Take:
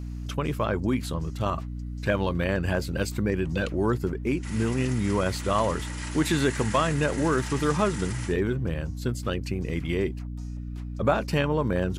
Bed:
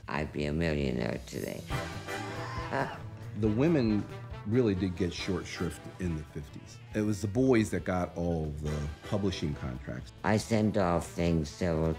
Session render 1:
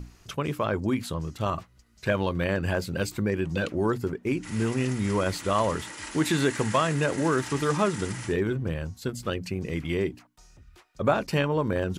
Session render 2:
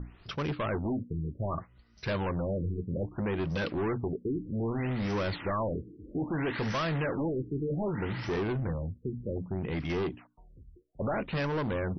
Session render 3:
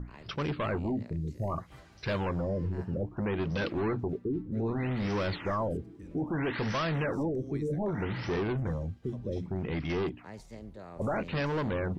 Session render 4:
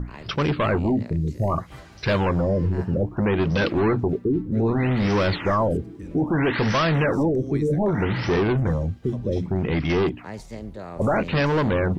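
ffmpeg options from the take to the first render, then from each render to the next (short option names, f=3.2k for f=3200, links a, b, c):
-af "bandreject=f=60:t=h:w=6,bandreject=f=120:t=h:w=6,bandreject=f=180:t=h:w=6,bandreject=f=240:t=h:w=6,bandreject=f=300:t=h:w=6"
-af "volume=28dB,asoftclip=hard,volume=-28dB,afftfilt=real='re*lt(b*sr/1024,460*pow(6200/460,0.5+0.5*sin(2*PI*0.63*pts/sr)))':imag='im*lt(b*sr/1024,460*pow(6200/460,0.5+0.5*sin(2*PI*0.63*pts/sr)))':win_size=1024:overlap=0.75"
-filter_complex "[1:a]volume=-19dB[a];[0:a][a]amix=inputs=2:normalize=0"
-af "volume=10dB"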